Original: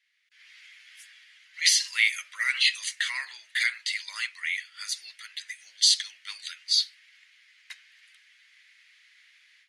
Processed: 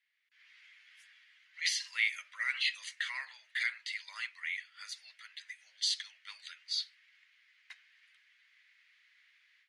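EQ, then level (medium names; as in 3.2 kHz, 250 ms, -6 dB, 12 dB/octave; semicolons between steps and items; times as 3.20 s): Chebyshev high-pass 470 Hz, order 5; low-pass 1.8 kHz 6 dB/octave; -3.0 dB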